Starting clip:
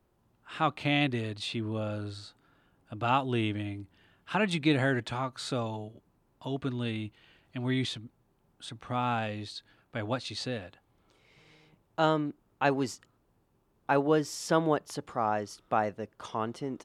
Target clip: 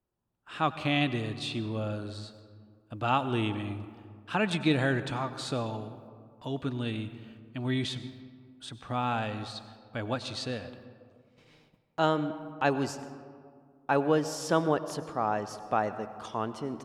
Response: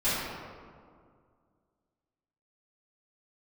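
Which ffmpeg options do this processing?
-filter_complex "[0:a]bandreject=frequency=2100:width=17,agate=range=-14dB:threshold=-60dB:ratio=16:detection=peak,asplit=2[link_01][link_02];[1:a]atrim=start_sample=2205,adelay=91[link_03];[link_02][link_03]afir=irnorm=-1:irlink=0,volume=-24.5dB[link_04];[link_01][link_04]amix=inputs=2:normalize=0"

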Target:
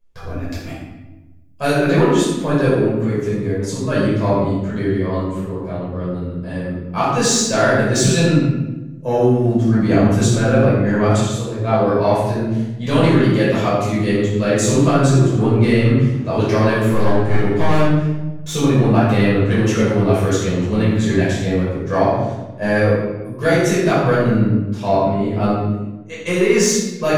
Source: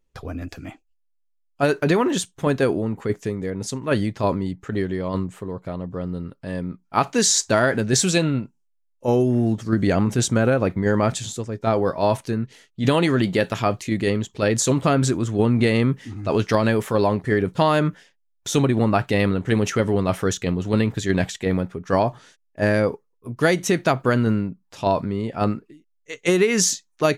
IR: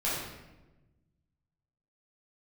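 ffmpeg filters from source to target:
-filter_complex "[0:a]asettb=1/sr,asplit=3[link_01][link_02][link_03];[link_01]atrim=end=0.514[link_04];[link_02]atrim=start=0.51:end=1.71,asetpts=PTS-STARTPTS,afade=type=in:duration=0.004:curve=qsin,afade=type=out:start_time=1.196:duration=0.004:curve=qsin,highshelf=frequency=3400:gain=9.5[link_05];[link_03]atrim=start=1.706[link_06];[link_04][link_05]acrossfade=duration=0.004:curve1=hsin:curve2=qsin[link_07];[link_07][link_06]acrossfade=duration=0.004:curve1=qsin:curve2=hsin,acontrast=75,asettb=1/sr,asplit=3[link_08][link_09][link_10];[link_08]atrim=end=16.884[link_11];[link_09]atrim=start=16.88:end=18.51,asetpts=PTS-STARTPTS,afade=type=in:duration=0.004:curve=qsin,afade=type=out:start_time=1.626:duration=0.004:curve=qsin,aeval=exprs='clip(val(0),-1,0.0891)':channel_layout=same[link_12];[link_10]atrim=start=18.506[link_13];[link_11][link_12]acrossfade=duration=0.004:curve1=hsin:curve2=qsin[link_14];[link_14][link_13]acrossfade=duration=0.004:curve1=qsin:curve2=hsin[link_15];[1:a]atrim=start_sample=2205[link_16];[link_15][link_16]afir=irnorm=-1:irlink=0,volume=-10.5dB"

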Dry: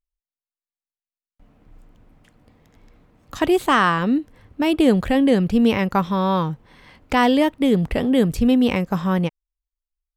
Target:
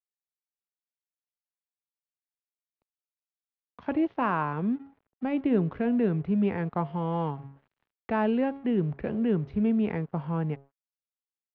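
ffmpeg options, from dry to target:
ffmpeg -i in.wav -filter_complex "[0:a]highpass=110,highshelf=frequency=2300:gain=-10.5,bandreject=frequency=156.7:width_type=h:width=4,bandreject=frequency=313.4:width_type=h:width=4,bandreject=frequency=470.1:width_type=h:width=4,bandreject=frequency=626.8:width_type=h:width=4,bandreject=frequency=783.5:width_type=h:width=4,bandreject=frequency=940.2:width_type=h:width=4,bandreject=frequency=1096.9:width_type=h:width=4,bandreject=frequency=1253.6:width_type=h:width=4,bandreject=frequency=1410.3:width_type=h:width=4,aresample=16000,aeval=exprs='sgn(val(0))*max(abs(val(0))-0.00631,0)':channel_layout=same,aresample=44100,asetrate=38808,aresample=44100,acrossover=split=250|3600[link_01][link_02][link_03];[link_03]acrusher=bits=4:mix=0:aa=0.000001[link_04];[link_01][link_02][link_04]amix=inputs=3:normalize=0,volume=-8dB" out.wav

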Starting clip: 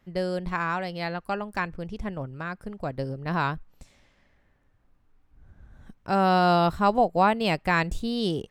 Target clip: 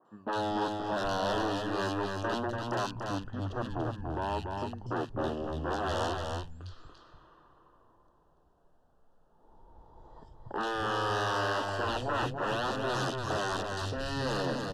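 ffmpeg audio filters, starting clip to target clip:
ffmpeg -i in.wav -filter_complex "[0:a]bandreject=frequency=60:width_type=h:width=6,bandreject=frequency=120:width_type=h:width=6,bandreject=frequency=180:width_type=h:width=6,bandreject=frequency=240:width_type=h:width=6,alimiter=limit=-16.5dB:level=0:latency=1:release=13,aeval=exprs='0.0316*(abs(mod(val(0)/0.0316+3,4)-2)-1)':channel_layout=same,acrossover=split=310|4000[link_01][link_02][link_03];[link_03]adelay=30[link_04];[link_01]adelay=140[link_05];[link_05][link_02][link_04]amix=inputs=3:normalize=0,asplit=2[link_06][link_07];[link_07]highpass=frequency=720:poles=1,volume=12dB,asoftclip=type=tanh:threshold=-22dB[link_08];[link_06][link_08]amix=inputs=2:normalize=0,lowpass=frequency=2900:poles=1,volume=-6dB,asuperstop=centerf=3800:order=4:qfactor=2.4,asplit=2[link_09][link_10];[link_10]aecho=0:1:166:0.596[link_11];[link_09][link_11]amix=inputs=2:normalize=0,asetrate=25442,aresample=44100,adynamicequalizer=threshold=0.00501:dfrequency=1500:dqfactor=0.7:tfrequency=1500:tqfactor=0.7:attack=5:release=100:ratio=0.375:range=2:mode=boostabove:tftype=highshelf,volume=1dB" out.wav

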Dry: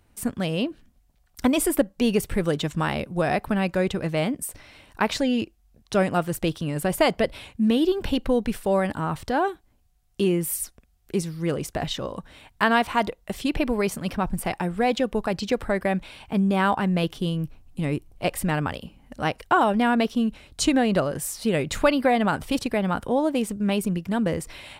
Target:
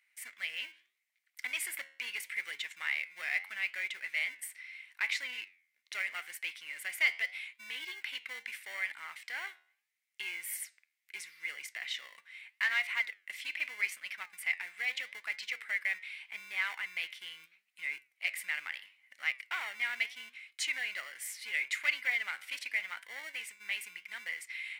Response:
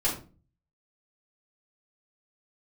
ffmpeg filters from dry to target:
-filter_complex "[0:a]asplit=2[link_01][link_02];[link_02]acrusher=samples=35:mix=1:aa=0.000001,volume=-12dB[link_03];[link_01][link_03]amix=inputs=2:normalize=0,flanger=delay=7:depth=5.9:regen=85:speed=0.78:shape=sinusoidal,asoftclip=type=tanh:threshold=-18dB,highpass=frequency=2100:width_type=q:width=8.6,volume=-6.5dB"

